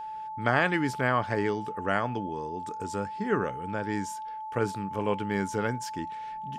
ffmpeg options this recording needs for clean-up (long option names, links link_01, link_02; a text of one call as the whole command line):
ffmpeg -i in.wav -af "bandreject=frequency=870:width=30" out.wav